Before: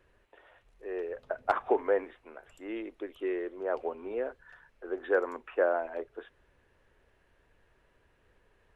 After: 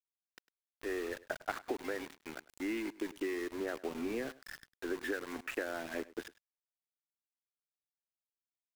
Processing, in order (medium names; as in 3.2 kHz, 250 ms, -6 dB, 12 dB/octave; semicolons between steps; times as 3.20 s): graphic EQ 250/500/1000/2000 Hz +10/-9/-9/+7 dB; compression 20:1, threshold -39 dBFS, peak gain reduction 16 dB; small samples zeroed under -48 dBFS; on a send: delay 102 ms -20 dB; on the sum: trim +6 dB